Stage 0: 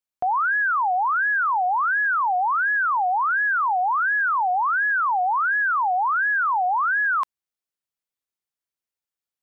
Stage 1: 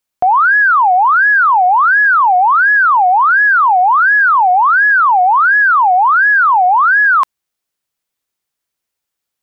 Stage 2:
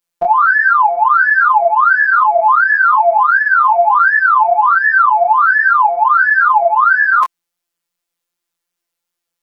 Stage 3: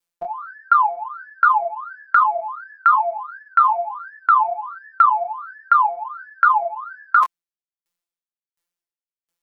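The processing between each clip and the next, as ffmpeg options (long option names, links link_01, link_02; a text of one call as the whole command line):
ffmpeg -i in.wav -af "acontrast=38,volume=6.5dB" out.wav
ffmpeg -i in.wav -af "afftfilt=real='hypot(re,im)*cos(PI*b)':imag='0':win_size=1024:overlap=0.75,flanger=delay=20:depth=5.5:speed=2.6,volume=6dB" out.wav
ffmpeg -i in.wav -af "aeval=exprs='val(0)*pow(10,-39*if(lt(mod(1.4*n/s,1),2*abs(1.4)/1000),1-mod(1.4*n/s,1)/(2*abs(1.4)/1000),(mod(1.4*n/s,1)-2*abs(1.4)/1000)/(1-2*abs(1.4)/1000))/20)':channel_layout=same" out.wav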